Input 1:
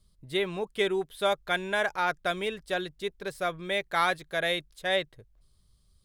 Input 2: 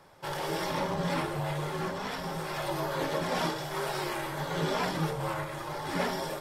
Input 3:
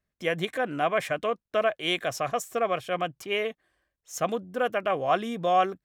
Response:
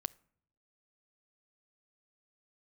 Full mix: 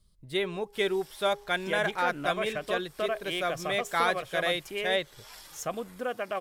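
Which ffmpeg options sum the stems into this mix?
-filter_complex "[0:a]bandreject=f=408.9:t=h:w=4,bandreject=f=817.8:t=h:w=4,volume=-2.5dB,asplit=3[a][b][c];[b]volume=-12dB[d];[1:a]aderivative,adelay=500,volume=-5dB,asplit=2[e][f];[f]volume=-14dB[g];[2:a]adelay=1450,volume=-4dB,asplit=2[h][i];[i]volume=-8dB[j];[c]apad=whole_len=304591[k];[e][k]sidechaincompress=threshold=-37dB:ratio=8:attack=16:release=456[l];[l][h]amix=inputs=2:normalize=0,acompressor=threshold=-40dB:ratio=2,volume=0dB[m];[3:a]atrim=start_sample=2205[n];[d][g][j]amix=inputs=3:normalize=0[o];[o][n]afir=irnorm=-1:irlink=0[p];[a][m][p]amix=inputs=3:normalize=0"

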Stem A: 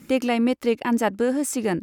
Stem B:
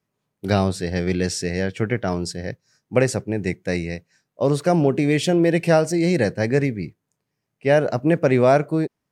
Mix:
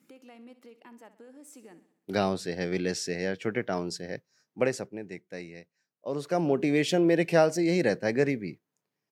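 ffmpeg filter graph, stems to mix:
-filter_complex "[0:a]acompressor=threshold=-28dB:ratio=6,alimiter=limit=-23dB:level=0:latency=1:release=325,volume=-17dB,asplit=2[a][b];[b]volume=-14.5dB[c];[1:a]equalizer=f=8.7k:w=2.9:g=-5.5,adelay=1650,volume=5dB,afade=t=out:st=4.42:d=0.68:silence=0.334965,afade=t=in:st=6.02:d=0.66:silence=0.298538[d];[c]aecho=0:1:64|128|192|256|320|384|448|512:1|0.54|0.292|0.157|0.085|0.0459|0.0248|0.0134[e];[a][d][e]amix=inputs=3:normalize=0,highpass=200"

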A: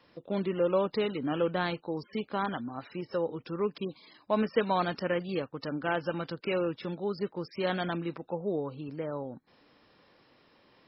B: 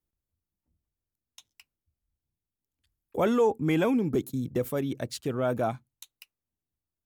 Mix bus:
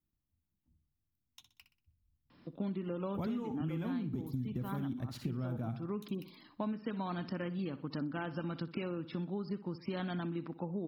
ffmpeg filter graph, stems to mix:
-filter_complex "[0:a]adelay=2300,volume=-1dB,asplit=2[a][b];[b]volume=-16.5dB[c];[1:a]asubboost=boost=3:cutoff=180,volume=-2dB,asplit=2[d][e];[e]volume=-10.5dB[f];[c][f]amix=inputs=2:normalize=0,aecho=0:1:62|124|186|248|310:1|0.37|0.137|0.0507|0.0187[g];[a][d][g]amix=inputs=3:normalize=0,equalizer=f=125:t=o:w=1:g=4,equalizer=f=250:t=o:w=1:g=8,equalizer=f=500:t=o:w=1:g=-8,equalizer=f=2k:t=o:w=1:g=-3,equalizer=f=8k:t=o:w=1:g=-11,acompressor=threshold=-34dB:ratio=10"

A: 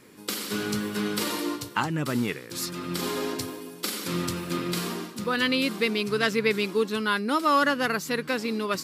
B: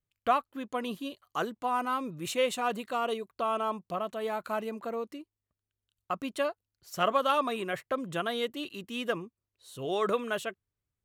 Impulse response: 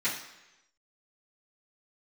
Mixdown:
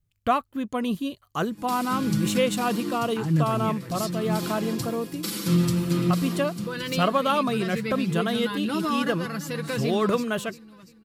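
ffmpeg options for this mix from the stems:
-filter_complex "[0:a]aecho=1:1:6:0.66,alimiter=limit=-16.5dB:level=0:latency=1:release=130,adelay=1400,volume=-2.5dB,asplit=2[a][b];[b]volume=-16.5dB[c];[1:a]volume=3dB,asplit=2[d][e];[e]apad=whole_len=451802[f];[a][f]sidechaincompress=threshold=-28dB:ratio=8:attack=16:release=983[g];[c]aecho=0:1:343|686|1029|1372|1715|2058:1|0.44|0.194|0.0852|0.0375|0.0165[h];[g][d][h]amix=inputs=3:normalize=0,bass=f=250:g=14,treble=f=4k:g=3"

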